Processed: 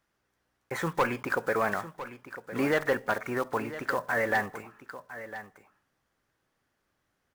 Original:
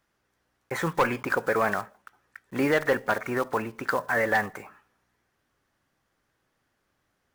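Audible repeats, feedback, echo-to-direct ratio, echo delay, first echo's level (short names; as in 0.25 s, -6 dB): 1, no steady repeat, -13.5 dB, 1.005 s, -13.5 dB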